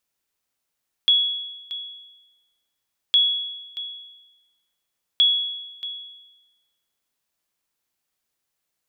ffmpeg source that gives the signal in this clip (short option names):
-f lavfi -i "aevalsrc='0.282*(sin(2*PI*3360*mod(t,2.06))*exp(-6.91*mod(t,2.06)/1.11)+0.178*sin(2*PI*3360*max(mod(t,2.06)-0.63,0))*exp(-6.91*max(mod(t,2.06)-0.63,0)/1.11))':d=6.18:s=44100"